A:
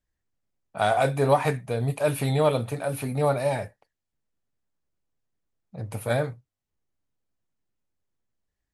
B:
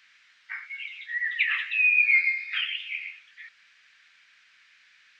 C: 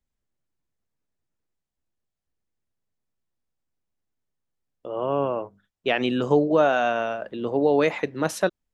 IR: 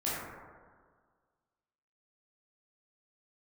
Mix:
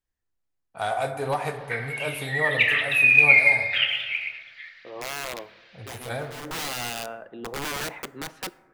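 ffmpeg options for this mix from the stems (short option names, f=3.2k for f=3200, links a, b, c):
-filter_complex "[0:a]equalizer=f=190:t=o:w=1.8:g=-7.5,aeval=exprs='0.237*(abs(mod(val(0)/0.237+3,4)-2)-1)':c=same,volume=-5dB,asplit=3[a][b][c];[b]volume=-13dB[d];[1:a]lowpass=f=4.2k:t=q:w=1.9,aphaser=in_gain=1:out_gain=1:delay=1.9:decay=0.37:speed=1.9:type=sinusoidal,adelay=1200,volume=-1.5dB,asplit=2[e][f];[f]volume=-8dB[g];[2:a]bass=f=250:g=-4,treble=f=4k:g=-13,acrossover=split=3100[h][i];[i]acompressor=threshold=-52dB:ratio=4:attack=1:release=60[j];[h][j]amix=inputs=2:normalize=0,aeval=exprs='(mod(8.91*val(0)+1,2)-1)/8.91':c=same,volume=-7dB,asplit=2[k][l];[l]volume=-24dB[m];[c]apad=whole_len=385365[n];[k][n]sidechaincompress=threshold=-48dB:ratio=8:attack=20:release=263[o];[3:a]atrim=start_sample=2205[p];[d][g][m]amix=inputs=3:normalize=0[q];[q][p]afir=irnorm=-1:irlink=0[r];[a][e][o][r]amix=inputs=4:normalize=0,bandreject=f=590:w=13"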